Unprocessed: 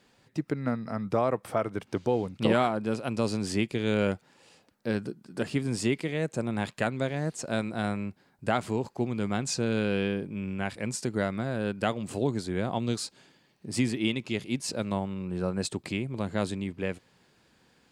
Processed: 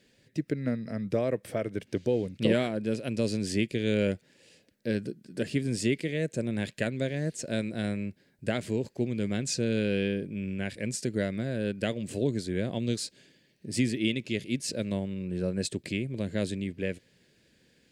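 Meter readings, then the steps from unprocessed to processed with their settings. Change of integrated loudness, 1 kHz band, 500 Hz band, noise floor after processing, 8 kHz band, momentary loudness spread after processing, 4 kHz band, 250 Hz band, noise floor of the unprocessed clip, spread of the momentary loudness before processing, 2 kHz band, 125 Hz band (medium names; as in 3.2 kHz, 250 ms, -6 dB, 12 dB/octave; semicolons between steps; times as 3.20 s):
-0.5 dB, -11.5 dB, -0.5 dB, -66 dBFS, 0.0 dB, 7 LU, 0.0 dB, 0.0 dB, -65 dBFS, 7 LU, -1.5 dB, 0.0 dB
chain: high-order bell 1 kHz -14 dB 1.1 oct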